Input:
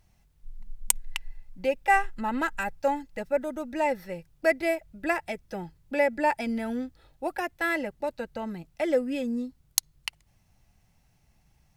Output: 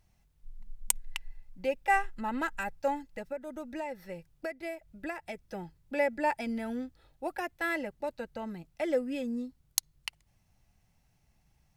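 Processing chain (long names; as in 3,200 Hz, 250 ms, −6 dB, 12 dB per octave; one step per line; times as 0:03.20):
0:03.11–0:05.46: downward compressor 6 to 1, threshold −30 dBFS, peak gain reduction 13 dB
level −4.5 dB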